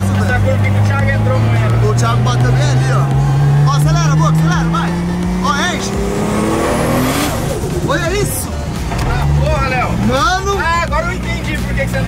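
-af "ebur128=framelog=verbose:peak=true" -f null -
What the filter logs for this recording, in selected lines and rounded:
Integrated loudness:
  I:         -14.0 LUFS
  Threshold: -24.0 LUFS
Loudness range:
  LRA:         3.5 LU
  Threshold: -33.9 LUFS
  LRA low:   -15.7 LUFS
  LRA high:  -12.1 LUFS
True peak:
  Peak:       -1.3 dBFS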